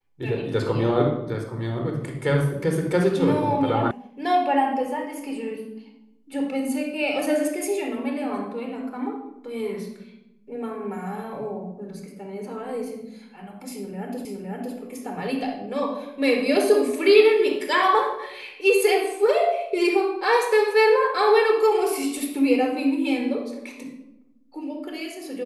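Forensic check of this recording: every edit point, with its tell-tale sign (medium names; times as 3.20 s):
3.91 s: sound stops dead
14.25 s: repeat of the last 0.51 s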